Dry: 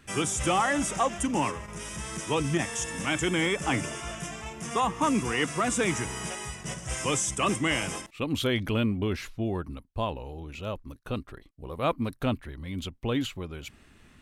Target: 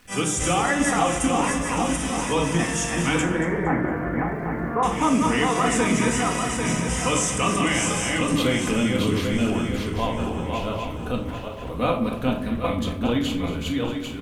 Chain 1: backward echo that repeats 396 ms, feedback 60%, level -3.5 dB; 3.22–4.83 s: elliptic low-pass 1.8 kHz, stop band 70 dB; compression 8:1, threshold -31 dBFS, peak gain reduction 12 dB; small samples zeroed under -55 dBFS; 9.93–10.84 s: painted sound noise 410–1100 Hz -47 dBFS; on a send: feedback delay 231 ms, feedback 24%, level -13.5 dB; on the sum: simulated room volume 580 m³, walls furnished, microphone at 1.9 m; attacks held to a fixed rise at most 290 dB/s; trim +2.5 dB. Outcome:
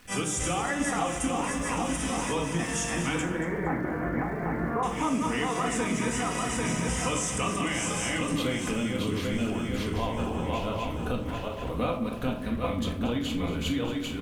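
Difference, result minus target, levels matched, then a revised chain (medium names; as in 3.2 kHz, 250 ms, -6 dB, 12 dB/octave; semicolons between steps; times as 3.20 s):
compression: peak gain reduction +8 dB
backward echo that repeats 396 ms, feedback 60%, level -3.5 dB; 3.22–4.83 s: elliptic low-pass 1.8 kHz, stop band 70 dB; compression 8:1, threshold -22 dBFS, peak gain reduction 4 dB; small samples zeroed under -55 dBFS; 9.93–10.84 s: painted sound noise 410–1100 Hz -47 dBFS; on a send: feedback delay 231 ms, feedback 24%, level -13.5 dB; on the sum: simulated room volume 580 m³, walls furnished, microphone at 1.9 m; attacks held to a fixed rise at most 290 dB/s; trim +2.5 dB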